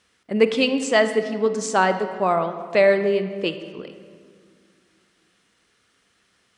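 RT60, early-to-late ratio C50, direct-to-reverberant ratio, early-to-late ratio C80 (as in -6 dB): 2.1 s, 9.5 dB, 9.0 dB, 10.5 dB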